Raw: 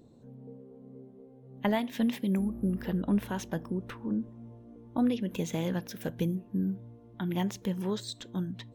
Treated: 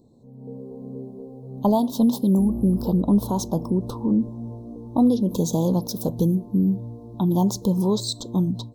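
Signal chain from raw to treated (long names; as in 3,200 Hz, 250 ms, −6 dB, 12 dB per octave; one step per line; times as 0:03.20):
Chebyshev band-stop filter 1,000–4,100 Hz, order 3
in parallel at +1.5 dB: brickwall limiter −30 dBFS, peak gain reduction 12 dB
on the sum: automatic gain control gain up to 13.5 dB
level −6 dB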